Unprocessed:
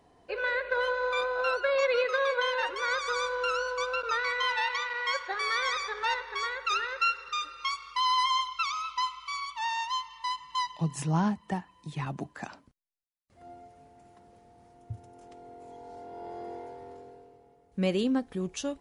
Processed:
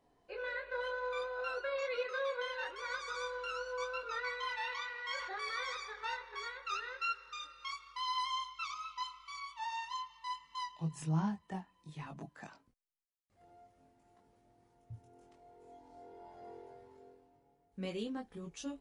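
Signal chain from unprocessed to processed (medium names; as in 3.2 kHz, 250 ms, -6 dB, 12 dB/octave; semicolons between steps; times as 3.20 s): chorus voices 6, 0.21 Hz, delay 22 ms, depth 4.2 ms; 4.60–5.77 s: decay stretcher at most 37 dB/s; trim -7.5 dB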